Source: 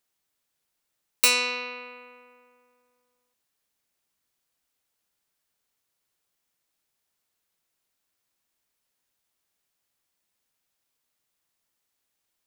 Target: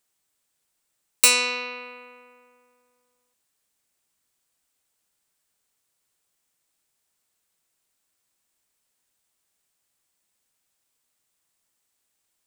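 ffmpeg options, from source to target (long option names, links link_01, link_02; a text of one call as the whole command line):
ffmpeg -i in.wav -af "equalizer=frequency=8200:width=2.2:gain=6.5,volume=2dB" out.wav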